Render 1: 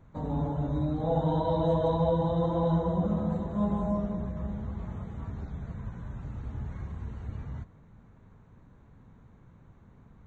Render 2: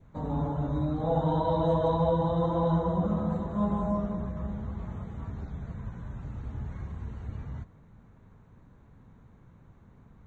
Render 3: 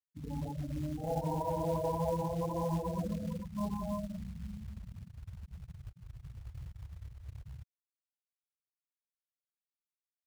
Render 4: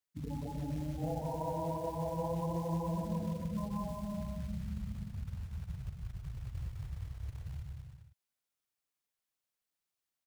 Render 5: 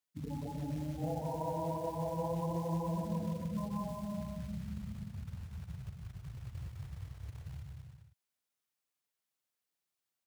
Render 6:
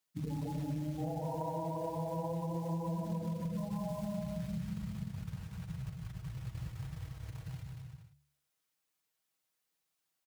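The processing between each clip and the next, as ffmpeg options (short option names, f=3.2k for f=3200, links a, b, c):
-af "adynamicequalizer=threshold=0.00355:dfrequency=1200:dqfactor=2.1:tfrequency=1200:tqfactor=2.1:attack=5:release=100:ratio=0.375:range=2.5:mode=boostabove:tftype=bell"
-af "afftfilt=real='re*gte(hypot(re,im),0.0891)':imag='im*gte(hypot(re,im),0.0891)':win_size=1024:overlap=0.75,highshelf=f=2.4k:t=q:w=3:g=-11,acrusher=bits=5:mode=log:mix=0:aa=0.000001,volume=-8dB"
-af "acompressor=threshold=-40dB:ratio=6,aecho=1:1:180|306|394.2|455.9|499.2:0.631|0.398|0.251|0.158|0.1,volume=4dB"
-af "highpass=81"
-af "aecho=1:1:6.3:0.53,bandreject=f=71.77:t=h:w=4,bandreject=f=143.54:t=h:w=4,bandreject=f=215.31:t=h:w=4,bandreject=f=287.08:t=h:w=4,bandreject=f=358.85:t=h:w=4,bandreject=f=430.62:t=h:w=4,bandreject=f=502.39:t=h:w=4,bandreject=f=574.16:t=h:w=4,bandreject=f=645.93:t=h:w=4,acompressor=threshold=-37dB:ratio=10,volume=3.5dB"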